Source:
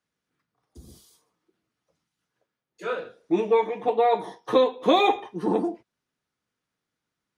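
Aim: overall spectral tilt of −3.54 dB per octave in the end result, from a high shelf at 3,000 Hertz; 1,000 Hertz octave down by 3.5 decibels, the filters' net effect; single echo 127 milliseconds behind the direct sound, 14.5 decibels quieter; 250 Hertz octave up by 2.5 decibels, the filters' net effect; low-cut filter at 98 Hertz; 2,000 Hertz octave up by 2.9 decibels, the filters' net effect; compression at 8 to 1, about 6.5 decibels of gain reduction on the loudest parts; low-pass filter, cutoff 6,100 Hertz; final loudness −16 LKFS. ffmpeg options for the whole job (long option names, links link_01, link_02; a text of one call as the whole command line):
ffmpeg -i in.wav -af "highpass=98,lowpass=6100,equalizer=frequency=250:width_type=o:gain=4,equalizer=frequency=1000:width_type=o:gain=-6.5,equalizer=frequency=2000:width_type=o:gain=3.5,highshelf=frequency=3000:gain=3.5,acompressor=threshold=-21dB:ratio=8,aecho=1:1:127:0.188,volume=12.5dB" out.wav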